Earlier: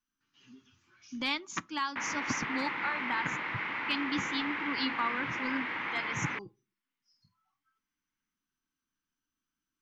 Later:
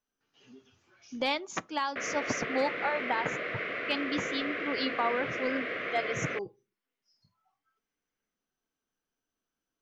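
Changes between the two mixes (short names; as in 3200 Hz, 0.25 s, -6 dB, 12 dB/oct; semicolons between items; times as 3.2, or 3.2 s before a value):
background: add Butterworth band-stop 870 Hz, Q 1.8; master: add band shelf 560 Hz +14 dB 1.2 oct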